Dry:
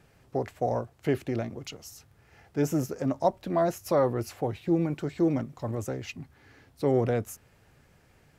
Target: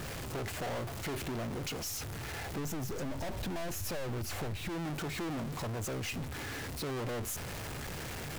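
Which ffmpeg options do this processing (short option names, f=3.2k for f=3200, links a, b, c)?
-filter_complex "[0:a]aeval=exprs='val(0)+0.5*0.0112*sgn(val(0))':c=same,aeval=exprs='(tanh(79.4*val(0)+0.3)-tanh(0.3))/79.4':c=same,asettb=1/sr,asplit=3[a][b][c];[a]atrim=end=2.584[d];[b]atrim=start=2.58:end=4.69,asetpts=PTS-STARTPTS,afade=t=in:d=0.004:c=qsin,afade=t=out:st=2.106:d=0.004:c=qsin,lowshelf=f=110:g=11.5[e];[c]atrim=start=4.686[f];[d][e]acrossfade=d=0.004:c1=hsin:c2=qsin[g];[g][f]acrossfade=d=0.004:c1=qsin:c2=hsin,acompressor=threshold=-38dB:ratio=6,volume=4.5dB"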